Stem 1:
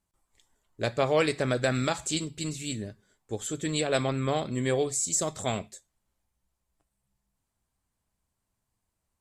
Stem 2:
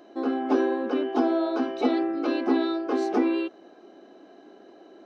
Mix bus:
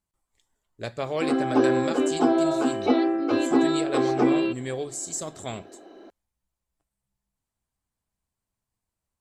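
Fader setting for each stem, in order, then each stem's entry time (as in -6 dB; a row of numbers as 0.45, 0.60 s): -4.5, +2.5 dB; 0.00, 1.05 s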